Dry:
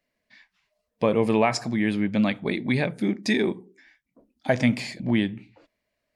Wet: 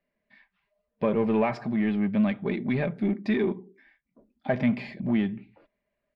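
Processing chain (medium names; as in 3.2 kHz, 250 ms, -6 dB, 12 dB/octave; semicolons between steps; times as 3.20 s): comb 5 ms, depth 39%; in parallel at -3.5 dB: overload inside the chain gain 25 dB; on the sum: distance through air 400 m; trim -5 dB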